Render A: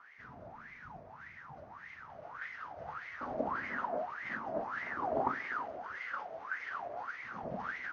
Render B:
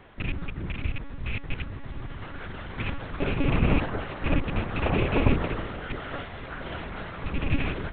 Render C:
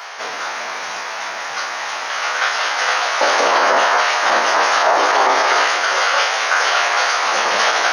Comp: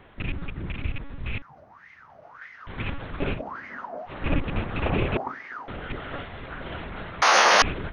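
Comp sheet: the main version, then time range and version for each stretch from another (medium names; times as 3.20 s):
B
1.42–2.67 s: from A
3.37–4.10 s: from A, crossfade 0.10 s
5.17–5.68 s: from A
7.22–7.62 s: from C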